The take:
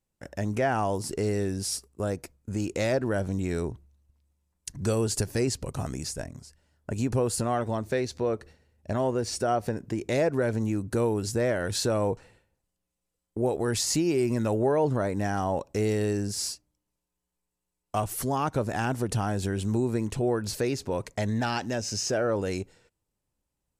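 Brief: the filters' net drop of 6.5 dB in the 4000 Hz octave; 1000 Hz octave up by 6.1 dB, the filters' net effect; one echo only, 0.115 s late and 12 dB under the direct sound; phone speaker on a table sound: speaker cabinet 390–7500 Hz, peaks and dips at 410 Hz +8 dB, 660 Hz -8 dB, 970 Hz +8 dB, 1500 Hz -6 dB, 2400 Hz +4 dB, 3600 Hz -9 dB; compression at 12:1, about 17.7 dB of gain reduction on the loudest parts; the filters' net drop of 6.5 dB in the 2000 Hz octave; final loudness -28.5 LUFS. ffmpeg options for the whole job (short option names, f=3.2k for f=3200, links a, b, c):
-af "equalizer=f=1k:t=o:g=7.5,equalizer=f=2k:t=o:g=-7.5,equalizer=f=4k:t=o:g=-5.5,acompressor=threshold=-38dB:ratio=12,highpass=f=390:w=0.5412,highpass=f=390:w=1.3066,equalizer=f=410:t=q:w=4:g=8,equalizer=f=660:t=q:w=4:g=-8,equalizer=f=970:t=q:w=4:g=8,equalizer=f=1.5k:t=q:w=4:g=-6,equalizer=f=2.4k:t=q:w=4:g=4,equalizer=f=3.6k:t=q:w=4:g=-9,lowpass=f=7.5k:w=0.5412,lowpass=f=7.5k:w=1.3066,aecho=1:1:115:0.251,volume=15dB"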